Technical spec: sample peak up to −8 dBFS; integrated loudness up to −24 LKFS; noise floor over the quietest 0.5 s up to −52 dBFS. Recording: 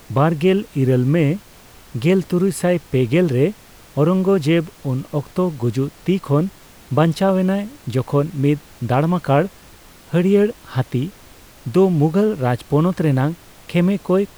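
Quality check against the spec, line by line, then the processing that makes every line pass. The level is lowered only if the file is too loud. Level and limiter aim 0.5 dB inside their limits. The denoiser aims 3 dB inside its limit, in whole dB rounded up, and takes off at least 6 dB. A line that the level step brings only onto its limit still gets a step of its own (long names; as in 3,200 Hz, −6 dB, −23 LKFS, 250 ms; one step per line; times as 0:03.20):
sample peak −4.0 dBFS: out of spec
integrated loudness −19.0 LKFS: out of spec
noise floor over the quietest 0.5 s −44 dBFS: out of spec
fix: broadband denoise 6 dB, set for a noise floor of −44 dBFS
level −5.5 dB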